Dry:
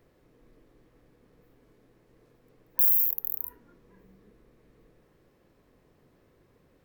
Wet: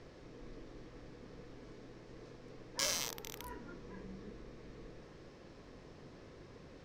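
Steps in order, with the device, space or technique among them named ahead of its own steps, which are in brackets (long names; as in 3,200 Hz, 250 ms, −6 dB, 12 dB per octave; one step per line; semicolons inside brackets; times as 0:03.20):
overdriven synthesiser ladder filter (soft clipping −14 dBFS, distortion −14 dB; transistor ladder low-pass 6,700 Hz, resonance 40%)
level +17 dB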